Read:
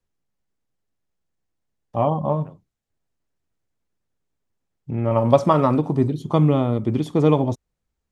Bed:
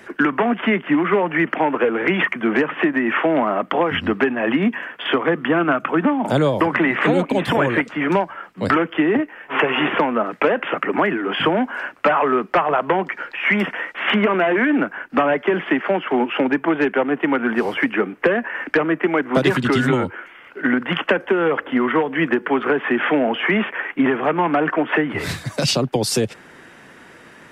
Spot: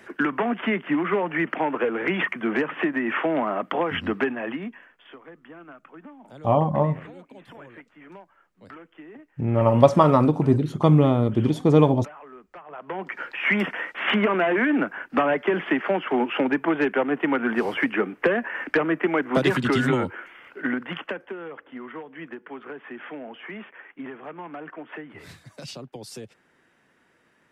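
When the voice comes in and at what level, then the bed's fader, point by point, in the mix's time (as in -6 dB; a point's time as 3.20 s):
4.50 s, +0.5 dB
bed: 4.29 s -6 dB
5.08 s -27 dB
12.60 s -27 dB
13.18 s -4 dB
20.45 s -4 dB
21.49 s -19.5 dB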